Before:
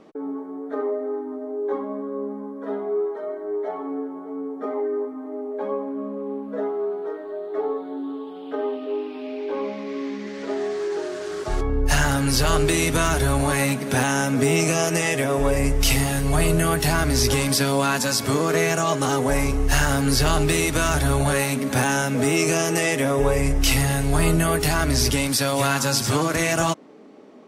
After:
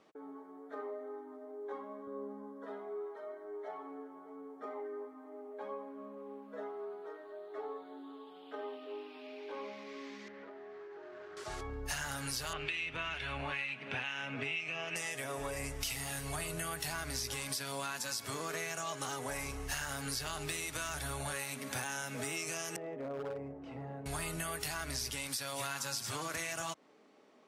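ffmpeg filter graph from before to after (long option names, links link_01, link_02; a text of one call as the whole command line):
ffmpeg -i in.wav -filter_complex "[0:a]asettb=1/sr,asplit=3[link_01][link_02][link_03];[link_01]atrim=end=2.074[link_04];[link_02]atrim=start=2.07:end=2.66,asetpts=PTS-STARTPTS,afade=type=in:duration=0.004:curve=qsin,afade=type=out:start_time=0.586:duration=0.004:curve=qsin,highpass=130,lowshelf=frequency=490:gain=6.5,bandreject=frequency=2400:width=5.4[link_05];[link_03]atrim=start=2.656[link_06];[link_04][link_05]acrossfade=duration=0.004:curve1=hsin:curve2=qsin[link_07];[link_07][link_06]acrossfade=duration=0.004:curve1=qsin:curve2=hsin,asettb=1/sr,asplit=3[link_08][link_09][link_10];[link_08]atrim=end=10.284[link_11];[link_09]atrim=start=10.28:end=11.37,asetpts=PTS-STARTPTS,afade=type=in:duration=0.004:curve=qsin,afade=type=out:start_time=1.086:duration=0.004:curve=qsin,lowpass=1700,acompressor=threshold=-29dB:ratio=10:attack=3.2:release=140:knee=1:detection=peak[link_12];[link_10]atrim=start=11.366[link_13];[link_11][link_12]acrossfade=duration=0.004:curve1=hsin:curve2=qsin[link_14];[link_14][link_13]acrossfade=duration=0.004:curve1=qsin:curve2=hsin,asettb=1/sr,asplit=3[link_15][link_16][link_17];[link_15]atrim=end=12.534[link_18];[link_16]atrim=start=12.53:end=14.96,asetpts=PTS-STARTPTS,afade=type=in:duration=0.004:curve=qsin,afade=type=out:start_time=2.426:duration=0.004:curve=qsin,acrossover=split=1400[link_19][link_20];[link_19]aeval=exprs='val(0)*(1-0.5/2+0.5/2*cos(2*PI*2.2*n/s))':channel_layout=same[link_21];[link_20]aeval=exprs='val(0)*(1-0.5/2-0.5/2*cos(2*PI*2.2*n/s))':channel_layout=same[link_22];[link_21][link_22]amix=inputs=2:normalize=0,lowpass=frequency=2700:width_type=q:width=4.3[link_23];[link_17]atrim=start=14.956[link_24];[link_18][link_23]acrossfade=duration=0.004:curve1=hsin:curve2=qsin[link_25];[link_25][link_24]acrossfade=duration=0.004:curve1=qsin:curve2=hsin,asettb=1/sr,asplit=3[link_26][link_27][link_28];[link_26]atrim=end=22.764[link_29];[link_27]atrim=start=22.76:end=24.06,asetpts=PTS-STARTPTS,afade=type=in:duration=0.004:curve=qsin,afade=type=out:start_time=1.296:duration=0.004:curve=qsin,asuperpass=centerf=340:order=4:qfactor=0.64,volume=17.5dB,asoftclip=hard,volume=-17.5dB[link_30];[link_28]atrim=start=24.056[link_31];[link_29][link_30]acrossfade=duration=0.004:curve1=hsin:curve2=qsin[link_32];[link_32][link_31]acrossfade=duration=0.004:curve1=qsin:curve2=hsin,highpass=83,equalizer=frequency=240:width=0.4:gain=-12,acompressor=threshold=-27dB:ratio=6,volume=-8dB" out.wav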